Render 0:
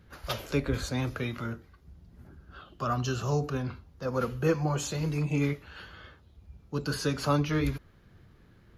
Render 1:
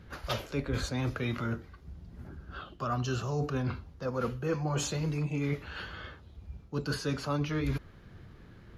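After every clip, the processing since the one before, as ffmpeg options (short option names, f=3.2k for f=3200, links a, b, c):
-af "highshelf=f=9.9k:g=-10,areverse,acompressor=threshold=-34dB:ratio=6,areverse,volume=5.5dB"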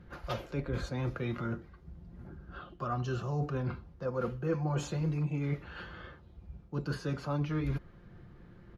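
-af "highshelf=f=2.5k:g=-11,aecho=1:1:5.7:0.36,volume=-1.5dB"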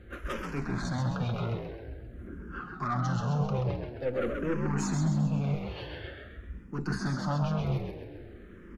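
-filter_complex "[0:a]aeval=exprs='(tanh(39.8*val(0)+0.35)-tanh(0.35))/39.8':c=same,asplit=7[a][b][c][d][e][f][g];[b]adelay=132,afreqshift=53,volume=-5dB[h];[c]adelay=264,afreqshift=106,volume=-11.7dB[i];[d]adelay=396,afreqshift=159,volume=-18.5dB[j];[e]adelay=528,afreqshift=212,volume=-25.2dB[k];[f]adelay=660,afreqshift=265,volume=-32dB[l];[g]adelay=792,afreqshift=318,volume=-38.7dB[m];[a][h][i][j][k][l][m]amix=inputs=7:normalize=0,asplit=2[n][o];[o]afreqshift=-0.48[p];[n][p]amix=inputs=2:normalize=1,volume=8.5dB"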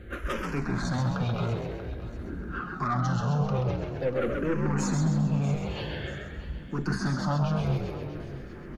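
-filter_complex "[0:a]asplit=2[a][b];[b]acompressor=threshold=-36dB:ratio=6,volume=0dB[c];[a][c]amix=inputs=2:normalize=0,aecho=1:1:638|1276|1914:0.168|0.0621|0.023"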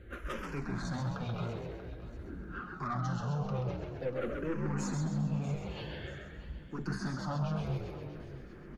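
-af "flanger=delay=2:depth=4.5:regen=-61:speed=1.8:shape=sinusoidal,volume=-3.5dB"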